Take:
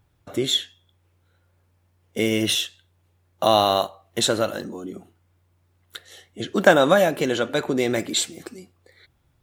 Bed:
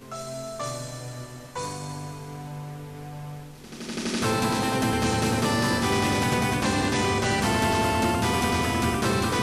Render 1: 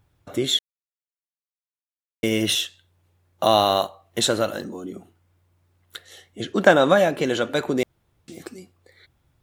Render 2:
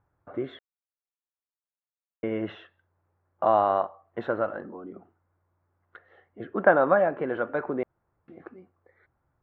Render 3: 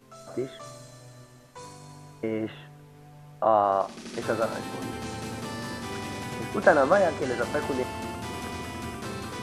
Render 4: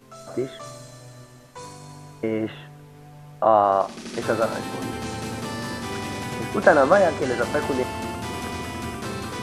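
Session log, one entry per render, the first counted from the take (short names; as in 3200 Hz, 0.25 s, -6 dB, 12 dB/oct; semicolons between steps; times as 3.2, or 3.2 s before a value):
0.59–2.23 mute; 6.52–7.26 high shelf 9900 Hz -11.5 dB; 7.83–8.28 room tone
LPF 1500 Hz 24 dB/oct; low shelf 440 Hz -11 dB
add bed -11.5 dB
gain +4.5 dB; limiter -2 dBFS, peak gain reduction 1.5 dB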